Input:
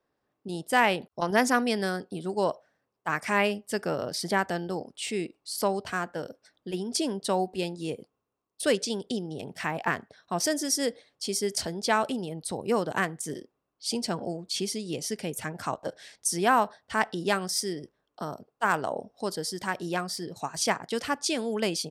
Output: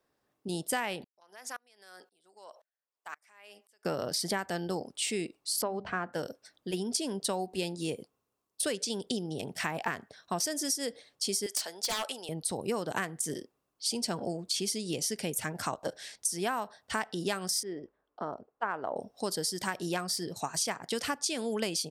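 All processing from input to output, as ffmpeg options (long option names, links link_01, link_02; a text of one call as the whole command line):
ffmpeg -i in.wav -filter_complex "[0:a]asettb=1/sr,asplit=3[link_01][link_02][link_03];[link_01]atrim=end=1.044[link_04];[link_02]atrim=start=1.04:end=3.85,asetpts=PTS-STARTPTS,afade=type=in:duration=0.004:curve=qsin,afade=type=out:start_time=2.806:duration=0.004:curve=qsin,highpass=640,acompressor=threshold=-39dB:ratio=3:attack=3.2:release=140:knee=1:detection=peak,aeval=exprs='val(0)*pow(10,-34*if(lt(mod(-1.9*n/s,1),2*abs(-1.9)/1000),1-mod(-1.9*n/s,1)/(2*abs(-1.9)/1000),(mod(-1.9*n/s,1)-2*abs(-1.9)/1000)/(1-2*abs(-1.9)/1000))/20)':channel_layout=same[link_05];[link_03]atrim=start=3.846[link_06];[link_04][link_05]acrossfade=duration=0.004:curve1=hsin:curve2=qsin[link_07];[link_07][link_06]acrossfade=duration=0.004:curve1=qsin:curve2=hsin,asettb=1/sr,asplit=3[link_08][link_09][link_10];[link_08]atrim=end=5.624[link_11];[link_09]atrim=start=5.62:end=6.13,asetpts=PTS-STARTPTS,afade=type=in:duration=0.004:curve=qsin,afade=type=out:start_time=0.506:duration=0.004:curve=qsin,lowpass=2000,bandreject=frequency=50:width_type=h:width=6,bandreject=frequency=100:width_type=h:width=6,bandreject=frequency=150:width_type=h:width=6,bandreject=frequency=200:width_type=h:width=6,bandreject=frequency=250:width_type=h:width=6[link_12];[link_10]atrim=start=6.126[link_13];[link_11][link_12]acrossfade=duration=0.004:curve1=hsin:curve2=qsin[link_14];[link_14][link_13]acrossfade=duration=0.004:curve1=qsin:curve2=hsin,asettb=1/sr,asplit=3[link_15][link_16][link_17];[link_15]atrim=end=11.464[link_18];[link_16]atrim=start=11.46:end=12.29,asetpts=PTS-STARTPTS,afade=type=in:duration=0.004:curve=qsin,afade=type=out:start_time=0.826:duration=0.004:curve=qsin,highpass=720,aeval=exprs='0.0596*(abs(mod(val(0)/0.0596+3,4)-2)-1)':channel_layout=same[link_19];[link_17]atrim=start=12.286[link_20];[link_18][link_19]acrossfade=duration=0.004:curve1=hsin:curve2=qsin[link_21];[link_21][link_20]acrossfade=duration=0.004:curve1=qsin:curve2=hsin,asettb=1/sr,asplit=3[link_22][link_23][link_24];[link_22]atrim=end=17.634[link_25];[link_23]atrim=start=17.63:end=18.96,asetpts=PTS-STARTPTS,afade=type=in:duration=0.004:curve=qsin,afade=type=out:start_time=1.326:duration=0.004:curve=qsin,lowpass=1600,equalizer=frequency=140:width_type=o:width=1.3:gain=-9[link_26];[link_24]atrim=start=18.956[link_27];[link_25][link_26]acrossfade=duration=0.004:curve1=hsin:curve2=qsin[link_28];[link_28][link_27]acrossfade=duration=0.004:curve1=qsin:curve2=hsin,equalizer=frequency=13000:width_type=o:width=2.4:gain=7,acompressor=threshold=-28dB:ratio=12" out.wav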